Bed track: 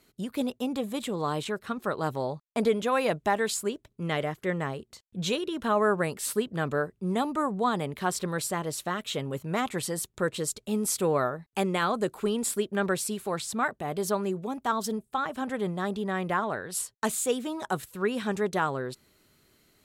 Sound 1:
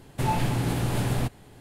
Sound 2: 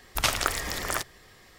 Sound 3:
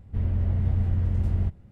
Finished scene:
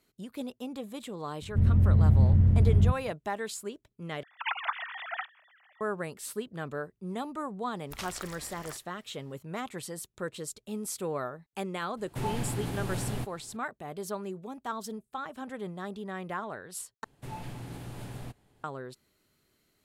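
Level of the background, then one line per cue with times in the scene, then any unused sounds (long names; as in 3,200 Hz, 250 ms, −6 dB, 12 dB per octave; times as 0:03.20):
bed track −8 dB
0:01.42: mix in 3 −4.5 dB + parametric band 150 Hz +12 dB 2.2 octaves
0:04.23: overwrite with 2 −7 dB + three sine waves on the formant tracks
0:07.75: mix in 2 −16 dB
0:11.97: mix in 1 −8 dB
0:17.04: overwrite with 1 −15.5 dB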